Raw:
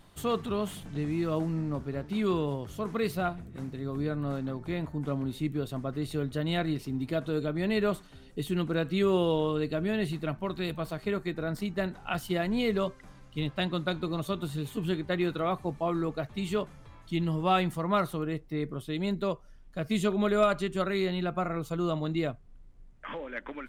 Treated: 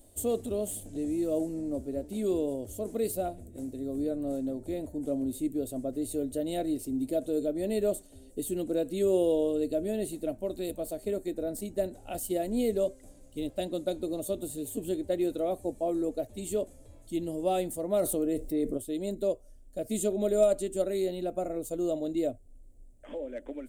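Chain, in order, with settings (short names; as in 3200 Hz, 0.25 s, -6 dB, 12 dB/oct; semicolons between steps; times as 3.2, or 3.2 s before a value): EQ curve 100 Hz 0 dB, 150 Hz -17 dB, 260 Hz +3 dB, 420 Hz 0 dB, 600 Hz +5 dB, 1100 Hz -21 dB, 5400 Hz -4 dB, 8000 Hz +12 dB, 13000 Hz +9 dB; 17.99–18.78 fast leveller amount 50%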